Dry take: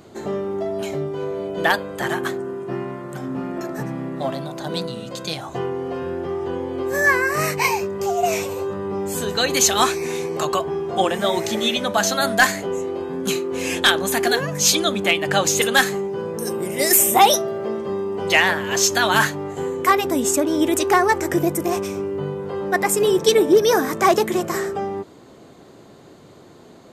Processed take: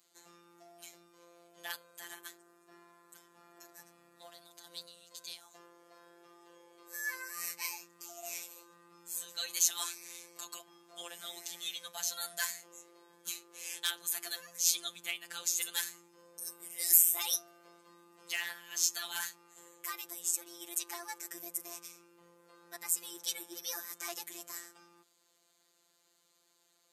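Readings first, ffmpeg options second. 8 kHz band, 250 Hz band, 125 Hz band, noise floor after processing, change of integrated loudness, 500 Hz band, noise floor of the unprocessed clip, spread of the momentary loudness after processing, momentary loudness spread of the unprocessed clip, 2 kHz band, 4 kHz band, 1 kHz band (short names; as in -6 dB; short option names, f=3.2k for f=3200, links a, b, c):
-10.5 dB, -34.5 dB, under -35 dB, -72 dBFS, -14.5 dB, -36.0 dB, -46 dBFS, 19 LU, 12 LU, -22.0 dB, -16.0 dB, -29.0 dB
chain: -af "aderivative,afftfilt=real='hypot(re,im)*cos(PI*b)':imag='0':win_size=1024:overlap=0.75,volume=-7dB"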